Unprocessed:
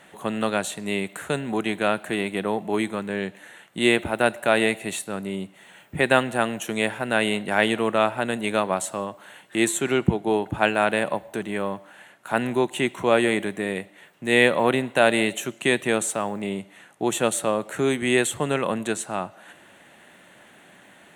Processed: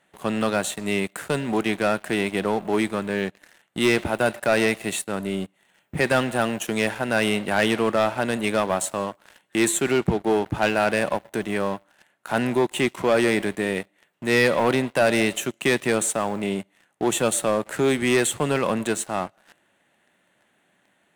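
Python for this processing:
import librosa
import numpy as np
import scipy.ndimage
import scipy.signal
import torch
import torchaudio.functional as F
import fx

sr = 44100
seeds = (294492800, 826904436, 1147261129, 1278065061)

y = fx.leveller(x, sr, passes=3)
y = y * 10.0 ** (-8.5 / 20.0)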